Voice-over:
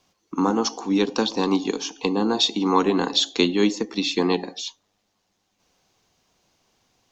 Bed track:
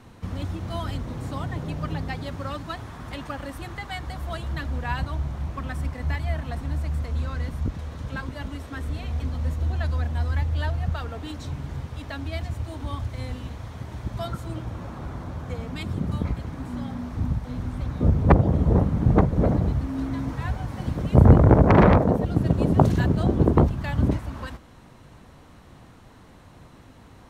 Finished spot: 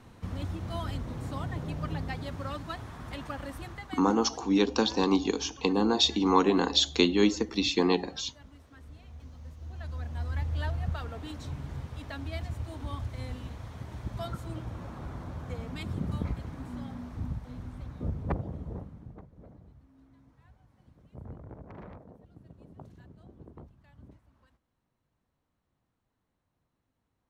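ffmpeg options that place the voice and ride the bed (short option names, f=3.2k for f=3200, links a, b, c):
-filter_complex "[0:a]adelay=3600,volume=-3.5dB[a];[1:a]volume=9dB,afade=t=out:st=3.55:d=0.63:silence=0.188365,afade=t=in:st=9.6:d=1.02:silence=0.211349,afade=t=out:st=16.17:d=3:silence=0.0501187[b];[a][b]amix=inputs=2:normalize=0"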